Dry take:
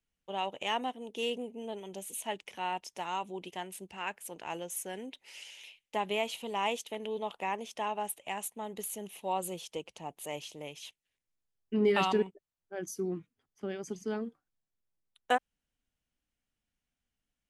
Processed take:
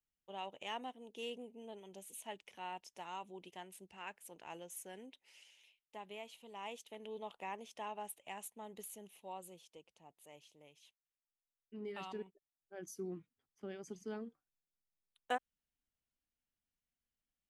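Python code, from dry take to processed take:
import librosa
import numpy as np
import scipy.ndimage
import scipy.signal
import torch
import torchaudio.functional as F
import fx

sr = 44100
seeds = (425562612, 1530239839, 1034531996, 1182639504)

y = fx.gain(x, sr, db=fx.line((5.03, -10.5), (5.67, -17.0), (6.43, -17.0), (7.13, -10.0), (8.79, -10.0), (9.81, -19.0), (11.96, -19.0), (12.89, -9.0)))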